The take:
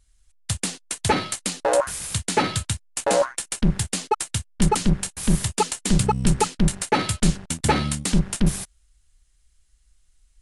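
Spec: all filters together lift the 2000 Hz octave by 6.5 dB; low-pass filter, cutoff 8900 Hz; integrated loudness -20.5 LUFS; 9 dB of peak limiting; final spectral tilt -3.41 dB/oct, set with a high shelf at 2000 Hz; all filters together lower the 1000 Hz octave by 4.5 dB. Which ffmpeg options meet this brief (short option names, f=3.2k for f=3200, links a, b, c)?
-af "lowpass=8.9k,equalizer=f=1k:t=o:g=-8.5,highshelf=f=2k:g=3,equalizer=f=2k:t=o:g=8.5,volume=5.5dB,alimiter=limit=-7.5dB:level=0:latency=1"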